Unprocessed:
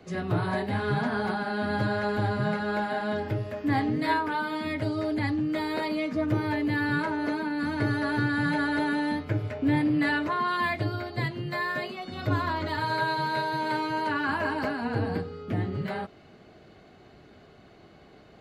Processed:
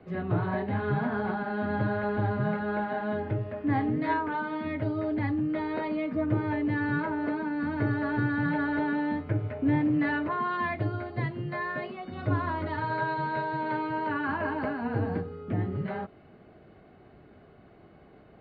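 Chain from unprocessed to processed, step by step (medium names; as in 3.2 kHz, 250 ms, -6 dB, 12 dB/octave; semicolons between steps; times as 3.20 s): distance through air 470 m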